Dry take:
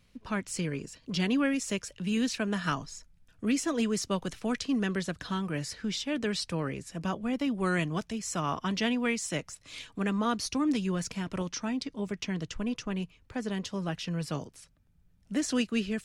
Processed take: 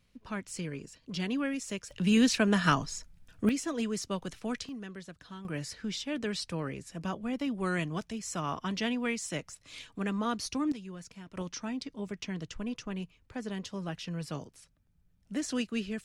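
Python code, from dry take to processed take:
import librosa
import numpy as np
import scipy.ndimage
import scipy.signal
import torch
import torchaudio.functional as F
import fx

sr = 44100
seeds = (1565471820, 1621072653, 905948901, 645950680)

y = fx.gain(x, sr, db=fx.steps((0.0, -5.0), (1.91, 5.0), (3.49, -4.0), (4.69, -13.0), (5.45, -3.0), (10.72, -13.0), (11.37, -4.0)))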